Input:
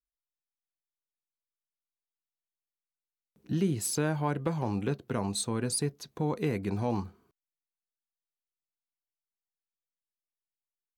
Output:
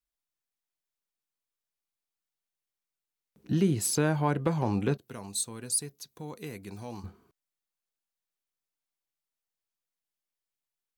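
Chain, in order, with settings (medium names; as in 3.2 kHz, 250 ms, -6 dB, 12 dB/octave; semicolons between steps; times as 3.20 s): 4.97–7.04 s: pre-emphasis filter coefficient 0.8; trim +3 dB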